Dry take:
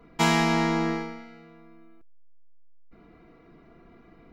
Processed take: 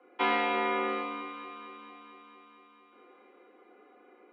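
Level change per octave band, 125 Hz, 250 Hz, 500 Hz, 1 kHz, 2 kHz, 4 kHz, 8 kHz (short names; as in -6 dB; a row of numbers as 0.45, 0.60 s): under -25 dB, -12.0 dB, -2.5 dB, -2.0 dB, -3.0 dB, -7.5 dB, under -35 dB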